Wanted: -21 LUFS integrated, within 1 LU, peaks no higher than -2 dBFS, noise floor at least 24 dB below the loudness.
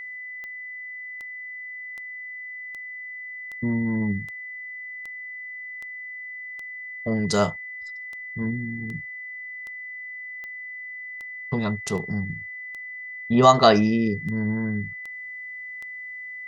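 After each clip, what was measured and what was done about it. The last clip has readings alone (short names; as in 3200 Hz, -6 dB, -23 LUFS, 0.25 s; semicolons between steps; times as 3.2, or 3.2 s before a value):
clicks 21; steady tone 2000 Hz; tone level -34 dBFS; loudness -27.5 LUFS; peak -2.5 dBFS; loudness target -21.0 LUFS
-> de-click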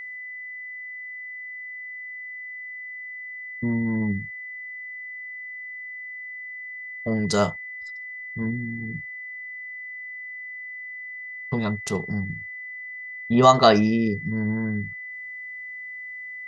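clicks 0; steady tone 2000 Hz; tone level -34 dBFS
-> notch 2000 Hz, Q 30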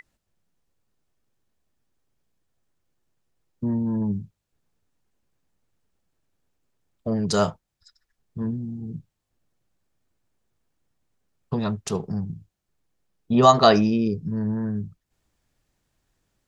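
steady tone none; loudness -23.5 LUFS; peak -2.0 dBFS; loudness target -21.0 LUFS
-> gain +2.5 dB; limiter -2 dBFS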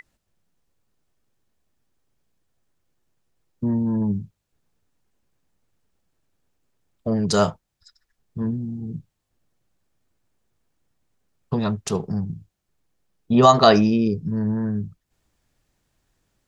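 loudness -21.5 LUFS; peak -2.0 dBFS; noise floor -78 dBFS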